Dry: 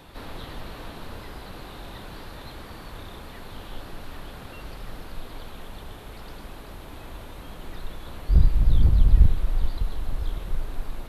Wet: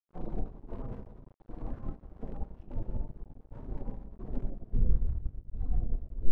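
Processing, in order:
turntable brake at the end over 0.35 s
in parallel at −10 dB: soft clipping −20 dBFS, distortion −6 dB
on the sum: phase-vocoder stretch with locked phases 0.57×
downward compressor 6 to 1, threshold −29 dBFS, peak gain reduction 17.5 dB
delay that swaps between a low-pass and a high-pass 239 ms, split 800 Hz, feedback 67%, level −6 dB
spectral peaks only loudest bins 16
gate pattern ".xx..xx....xxx." 111 BPM −12 dB
hum removal 62.85 Hz, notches 4
on a send at −1 dB: convolution reverb RT60 1.0 s, pre-delay 6 ms
on the sum: power curve on the samples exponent 1.4
phase-vocoder pitch shift with formants kept −7.5 semitones
dead-zone distortion −56.5 dBFS
level +6.5 dB

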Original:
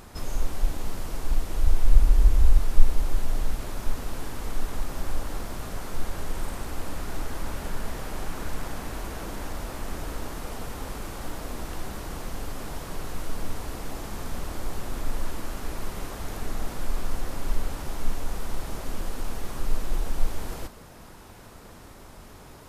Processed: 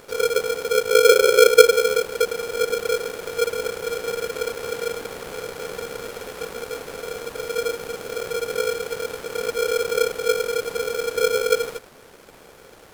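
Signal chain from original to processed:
time stretch by overlap-add 0.57×, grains 29 ms
ring modulator with a square carrier 470 Hz

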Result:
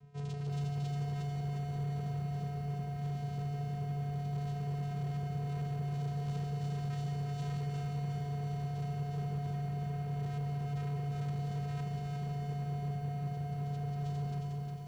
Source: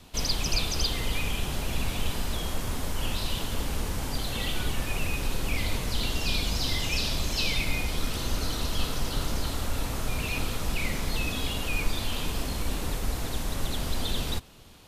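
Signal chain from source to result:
low-pass filter 1,100 Hz 6 dB per octave
channel vocoder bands 4, square 143 Hz
hard clipping −33 dBFS, distortion −18 dB
on a send at −8 dB: convolution reverb RT60 0.45 s, pre-delay 159 ms
on the sum: feedback echo at a low word length 358 ms, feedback 55%, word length 11 bits, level −3 dB

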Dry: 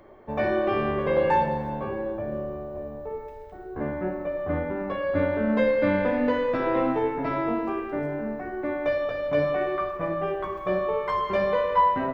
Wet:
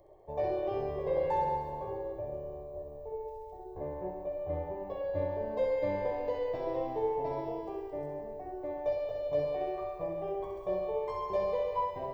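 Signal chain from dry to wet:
parametric band 2,600 Hz −10 dB 1.3 octaves
phaser with its sweep stopped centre 580 Hz, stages 4
feedback echo with a high-pass in the loop 66 ms, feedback 77%, high-pass 330 Hz, level −6 dB
level −5 dB

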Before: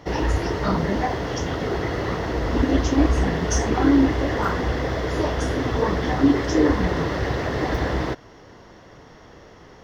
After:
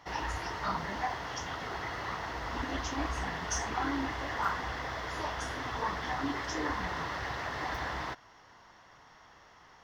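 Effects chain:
low shelf with overshoot 650 Hz −10 dB, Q 1.5
level −7.5 dB

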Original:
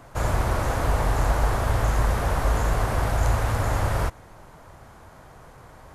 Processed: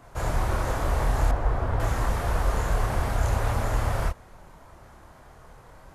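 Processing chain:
multi-voice chorus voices 6, 1.2 Hz, delay 27 ms, depth 3 ms
0:01.31–0:01.80: low-pass filter 1,300 Hz 6 dB per octave

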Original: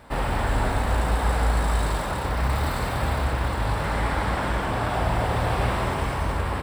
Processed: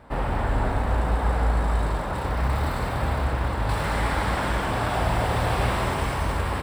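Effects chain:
high-shelf EQ 2,600 Hz −10.5 dB, from 0:02.14 −5.5 dB, from 0:03.69 +3 dB

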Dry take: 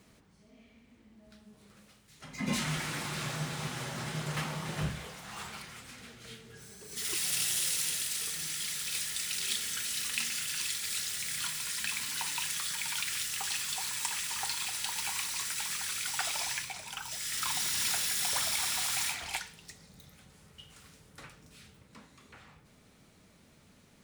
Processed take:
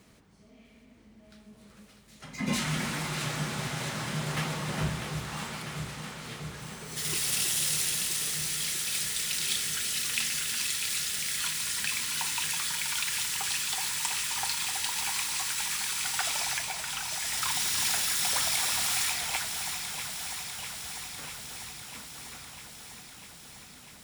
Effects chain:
delay that swaps between a low-pass and a high-pass 324 ms, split 1,200 Hz, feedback 86%, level −6.5 dB
level +2.5 dB

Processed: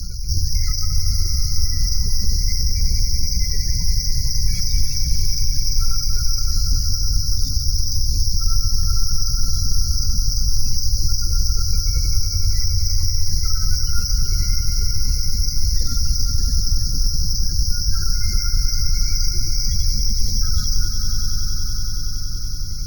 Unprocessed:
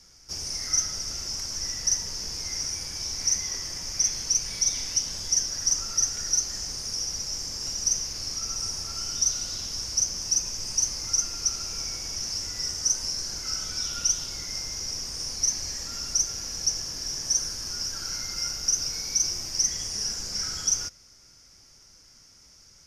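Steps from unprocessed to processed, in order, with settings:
bad sample-rate conversion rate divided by 4×, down none, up zero stuff
gate on every frequency bin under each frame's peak −15 dB strong
in parallel at +2 dB: compressor whose output falls as the input rises −22 dBFS, ratio −0.5
on the sum: RIAA equalisation playback
on a send: echo that builds up and dies away 94 ms, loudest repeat 5, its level −11 dB
on the sum: multiband upward and downward compressor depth 70%

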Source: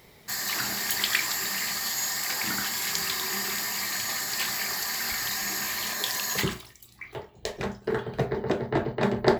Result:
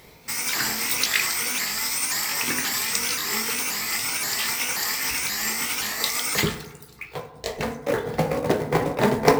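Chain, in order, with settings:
pitch shifter swept by a sawtooth +4.5 semitones, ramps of 529 ms
floating-point word with a short mantissa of 2 bits
feedback delay network reverb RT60 1.3 s, low-frequency decay 0.9×, high-frequency decay 0.3×, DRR 9 dB
level +5 dB

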